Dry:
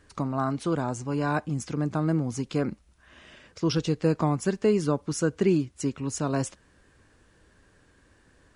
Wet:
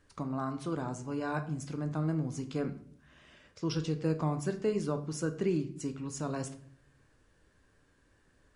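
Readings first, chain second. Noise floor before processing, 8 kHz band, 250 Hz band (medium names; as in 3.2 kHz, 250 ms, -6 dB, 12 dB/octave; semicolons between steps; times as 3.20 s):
-61 dBFS, -8.0 dB, -7.5 dB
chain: simulated room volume 83 m³, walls mixed, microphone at 0.32 m; trim -8.5 dB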